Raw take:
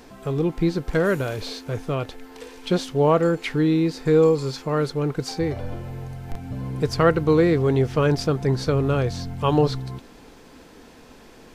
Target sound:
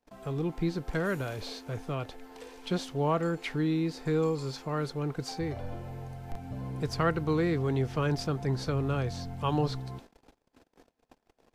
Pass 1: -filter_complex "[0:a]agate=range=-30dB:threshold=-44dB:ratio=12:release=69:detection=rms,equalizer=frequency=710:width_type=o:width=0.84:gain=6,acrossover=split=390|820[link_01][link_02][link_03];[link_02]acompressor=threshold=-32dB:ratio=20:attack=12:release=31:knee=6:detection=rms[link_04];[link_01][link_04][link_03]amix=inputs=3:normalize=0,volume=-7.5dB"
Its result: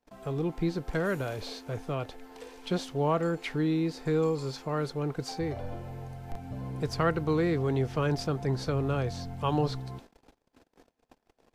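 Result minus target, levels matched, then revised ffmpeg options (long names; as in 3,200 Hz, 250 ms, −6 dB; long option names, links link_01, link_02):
downward compressor: peak gain reduction −7.5 dB
-filter_complex "[0:a]agate=range=-30dB:threshold=-44dB:ratio=12:release=69:detection=rms,equalizer=frequency=710:width_type=o:width=0.84:gain=6,acrossover=split=390|820[link_01][link_02][link_03];[link_02]acompressor=threshold=-40dB:ratio=20:attack=12:release=31:knee=6:detection=rms[link_04];[link_01][link_04][link_03]amix=inputs=3:normalize=0,volume=-7.5dB"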